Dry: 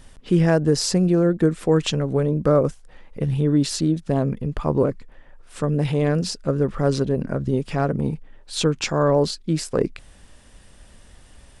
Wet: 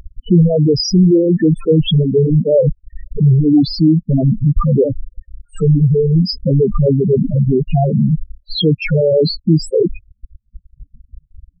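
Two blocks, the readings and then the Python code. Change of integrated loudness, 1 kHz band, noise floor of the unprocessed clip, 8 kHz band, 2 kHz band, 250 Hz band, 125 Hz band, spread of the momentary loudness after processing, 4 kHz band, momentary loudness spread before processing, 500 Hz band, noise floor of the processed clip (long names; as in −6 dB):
+8.0 dB, −1.0 dB, −49 dBFS, can't be measured, 0.0 dB, +8.0 dB, +10.0 dB, 6 LU, +6.5 dB, 7 LU, +6.5 dB, −62 dBFS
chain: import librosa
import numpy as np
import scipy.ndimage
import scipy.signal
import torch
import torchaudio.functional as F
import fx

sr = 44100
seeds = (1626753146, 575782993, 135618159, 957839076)

y = fx.leveller(x, sr, passes=5)
y = fx.spec_topn(y, sr, count=4)
y = fx.dereverb_blind(y, sr, rt60_s=0.78)
y = y * 10.0 ** (1.5 / 20.0)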